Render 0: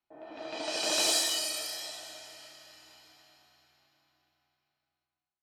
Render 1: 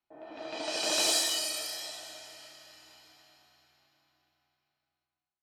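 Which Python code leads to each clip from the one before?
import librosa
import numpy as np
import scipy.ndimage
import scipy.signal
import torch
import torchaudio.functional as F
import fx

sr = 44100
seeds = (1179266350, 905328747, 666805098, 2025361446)

y = x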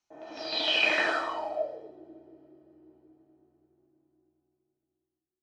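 y = fx.filter_sweep_lowpass(x, sr, from_hz=6200.0, to_hz=360.0, start_s=0.32, end_s=1.94, q=7.3)
y = y * 10.0 ** (2.0 / 20.0)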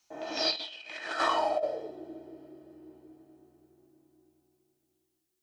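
y = fx.high_shelf(x, sr, hz=2600.0, db=9.5)
y = fx.over_compress(y, sr, threshold_db=-31.0, ratio=-0.5)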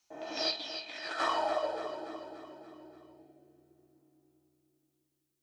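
y = fx.echo_feedback(x, sr, ms=289, feedback_pct=55, wet_db=-9)
y = y * 10.0 ** (-3.5 / 20.0)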